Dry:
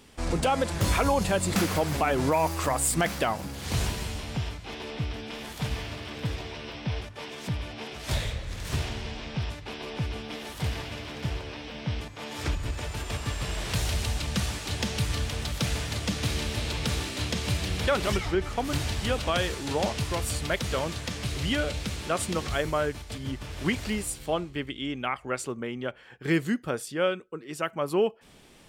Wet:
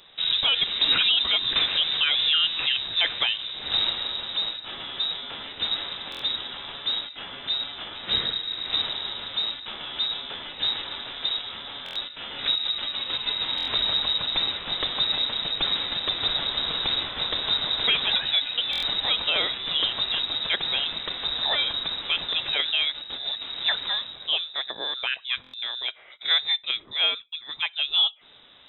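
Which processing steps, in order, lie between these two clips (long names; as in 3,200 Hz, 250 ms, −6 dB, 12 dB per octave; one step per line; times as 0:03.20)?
voice inversion scrambler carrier 3,800 Hz
buffer that repeats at 0:06.10/0:11.84/0:13.56/0:18.71/0:25.42, samples 1,024, times 4
level +2 dB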